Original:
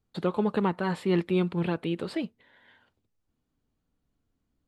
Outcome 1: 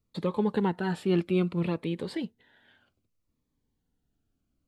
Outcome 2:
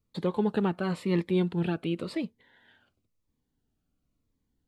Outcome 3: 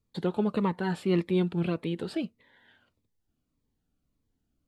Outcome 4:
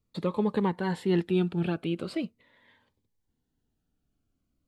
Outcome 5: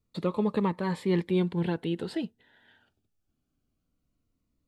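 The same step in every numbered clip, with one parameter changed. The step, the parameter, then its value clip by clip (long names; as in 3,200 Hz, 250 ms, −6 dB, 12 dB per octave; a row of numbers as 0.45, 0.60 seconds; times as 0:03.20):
phaser whose notches keep moving one way, speed: 0.62, 0.96, 1.7, 0.41, 0.22 Hertz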